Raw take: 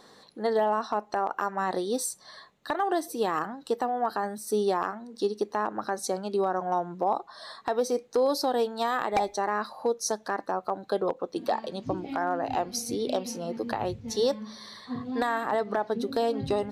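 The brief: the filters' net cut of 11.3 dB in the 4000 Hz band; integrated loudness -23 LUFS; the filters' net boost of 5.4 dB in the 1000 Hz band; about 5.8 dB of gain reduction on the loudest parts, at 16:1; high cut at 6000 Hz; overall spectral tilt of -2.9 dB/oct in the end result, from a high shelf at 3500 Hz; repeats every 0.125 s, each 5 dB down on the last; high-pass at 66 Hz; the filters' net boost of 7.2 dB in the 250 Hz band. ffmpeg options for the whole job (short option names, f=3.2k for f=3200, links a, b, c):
-af "highpass=66,lowpass=6k,equalizer=f=250:t=o:g=8.5,equalizer=f=1k:t=o:g=7.5,highshelf=f=3.5k:g=-6.5,equalizer=f=4k:t=o:g=-8.5,acompressor=threshold=-22dB:ratio=16,aecho=1:1:125|250|375|500|625|750|875:0.562|0.315|0.176|0.0988|0.0553|0.031|0.0173,volume=4.5dB"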